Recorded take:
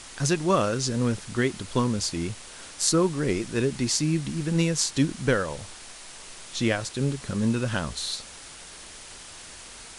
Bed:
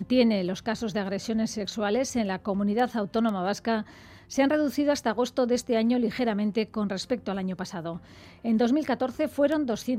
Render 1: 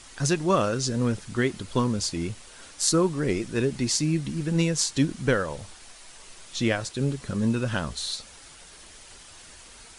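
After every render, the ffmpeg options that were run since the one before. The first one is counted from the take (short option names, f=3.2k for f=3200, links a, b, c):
-af "afftdn=nr=6:nf=-44"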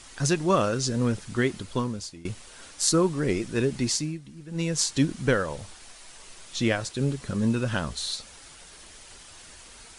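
-filter_complex "[0:a]asplit=4[a][b][c][d];[a]atrim=end=2.25,asetpts=PTS-STARTPTS,afade=t=out:st=1.54:d=0.71:silence=0.0891251[e];[b]atrim=start=2.25:end=4.19,asetpts=PTS-STARTPTS,afade=t=in:d=0.004:c=hsin:silence=0.0891251,afade=t=out:st=1.63:d=0.31:silence=0.188365[f];[c]atrim=start=4.19:end=4.48,asetpts=PTS-STARTPTS,volume=-14.5dB[g];[d]atrim=start=4.48,asetpts=PTS-STARTPTS,afade=t=in:d=0.31:silence=0.188365[h];[e][f][g][h]concat=n=4:v=0:a=1"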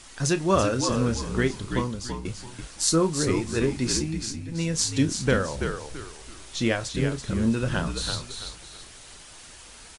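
-filter_complex "[0:a]asplit=2[a][b];[b]adelay=31,volume=-12dB[c];[a][c]amix=inputs=2:normalize=0,asplit=2[d][e];[e]asplit=4[f][g][h][i];[f]adelay=333,afreqshift=-60,volume=-6.5dB[j];[g]adelay=666,afreqshift=-120,volume=-16.4dB[k];[h]adelay=999,afreqshift=-180,volume=-26.3dB[l];[i]adelay=1332,afreqshift=-240,volume=-36.2dB[m];[j][k][l][m]amix=inputs=4:normalize=0[n];[d][n]amix=inputs=2:normalize=0"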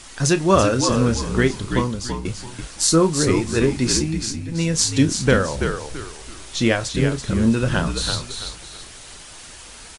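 -af "volume=6dB,alimiter=limit=-1dB:level=0:latency=1"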